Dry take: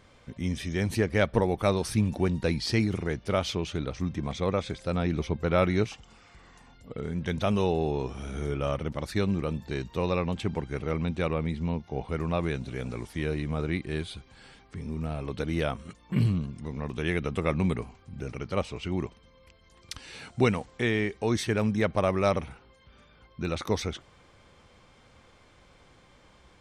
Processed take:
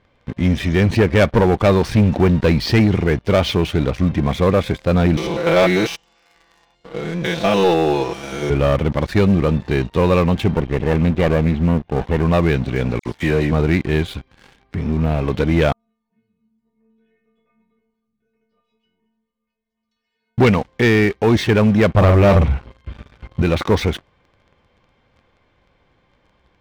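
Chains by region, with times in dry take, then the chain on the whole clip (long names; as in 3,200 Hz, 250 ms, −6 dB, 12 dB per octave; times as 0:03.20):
0:05.17–0:08.50: spectrum averaged block by block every 100 ms + bass and treble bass −13 dB, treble +13 dB + comb filter 6 ms, depth 86%
0:10.51–0:12.23: lower of the sound and its delayed copy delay 0.32 ms + high-frequency loss of the air 150 metres
0:12.99–0:13.52: high-pass filter 88 Hz 6 dB per octave + all-pass dispersion lows, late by 70 ms, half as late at 2,800 Hz
0:15.72–0:20.38: downward compressor 2 to 1, threshold −54 dBFS + stiff-string resonator 220 Hz, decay 0.75 s, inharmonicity 0.008 + delay that swaps between a low-pass and a high-pass 112 ms, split 980 Hz, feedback 61%, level −11.5 dB
0:21.94–0:23.42: parametric band 69 Hz +13.5 dB 2.1 octaves + double-tracking delay 45 ms −7.5 dB
whole clip: low-pass filter 3,300 Hz 12 dB per octave; notch filter 1,300 Hz, Q 12; leveller curve on the samples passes 3; level +3.5 dB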